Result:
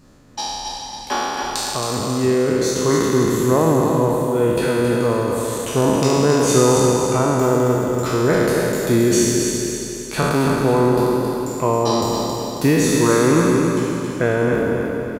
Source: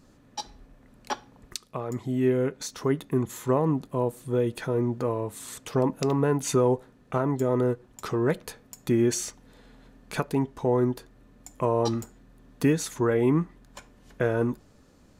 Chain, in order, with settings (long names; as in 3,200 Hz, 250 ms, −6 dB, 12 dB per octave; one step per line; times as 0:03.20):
peak hold with a decay on every bin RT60 2.41 s
on a send: repeating echo 272 ms, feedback 48%, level −5.5 dB
on the sum: level +4.5 dB